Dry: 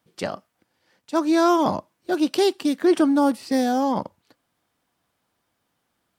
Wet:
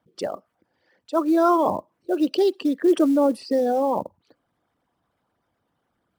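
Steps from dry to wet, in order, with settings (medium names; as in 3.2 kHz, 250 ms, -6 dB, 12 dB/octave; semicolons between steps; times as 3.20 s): resonances exaggerated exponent 2; short-mantissa float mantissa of 4-bit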